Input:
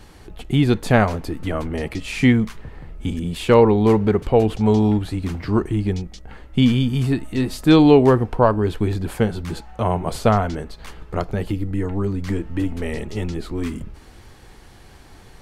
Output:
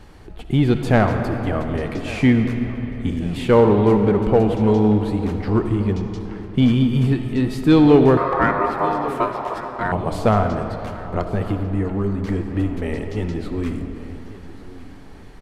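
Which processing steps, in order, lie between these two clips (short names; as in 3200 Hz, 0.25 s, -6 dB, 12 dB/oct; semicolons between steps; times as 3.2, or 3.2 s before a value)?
high shelf 3600 Hz -8.5 dB; digital reverb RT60 3.5 s, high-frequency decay 0.6×, pre-delay 25 ms, DRR 6.5 dB; in parallel at -6 dB: hard clip -12 dBFS, distortion -11 dB; 8.17–9.92 on the sum: ring modulator 810 Hz; on a send: feedback echo 1.145 s, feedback 37%, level -18 dB; on the sum: gain -3 dB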